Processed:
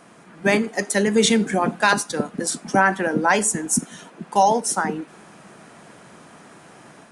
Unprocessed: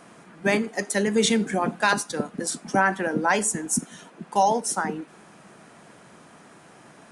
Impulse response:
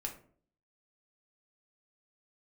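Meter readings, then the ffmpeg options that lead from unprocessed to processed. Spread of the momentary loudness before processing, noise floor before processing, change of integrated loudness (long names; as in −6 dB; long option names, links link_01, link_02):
8 LU, −51 dBFS, +4.0 dB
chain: -af "dynaudnorm=framelen=200:gausssize=3:maxgain=4dB"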